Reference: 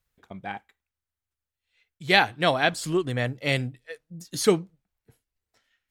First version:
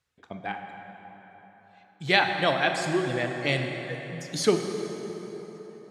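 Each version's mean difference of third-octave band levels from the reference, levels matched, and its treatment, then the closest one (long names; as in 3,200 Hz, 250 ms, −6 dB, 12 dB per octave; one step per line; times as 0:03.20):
9.0 dB: reverb reduction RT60 2 s
in parallel at +1 dB: downward compressor, threshold −34 dBFS, peak gain reduction 19 dB
on the sum: band-pass filter 100–7,800 Hz
dense smooth reverb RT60 4.4 s, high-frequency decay 0.6×, DRR 3.5 dB
level −3.5 dB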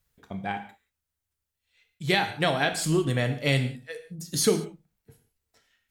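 6.0 dB: high-shelf EQ 4,700 Hz +6 dB
downward compressor 6 to 1, threshold −22 dBFS, peak gain reduction 10 dB
low-shelf EQ 490 Hz +4 dB
reverb whose tail is shaped and stops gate 210 ms falling, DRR 6 dB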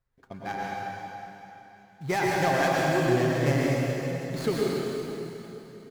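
13.0 dB: running median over 15 samples
comb filter 7.5 ms, depth 35%
downward compressor 5 to 1, threshold −25 dBFS, peak gain reduction 11 dB
dense smooth reverb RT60 3.3 s, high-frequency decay 0.95×, pre-delay 85 ms, DRR −5 dB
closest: second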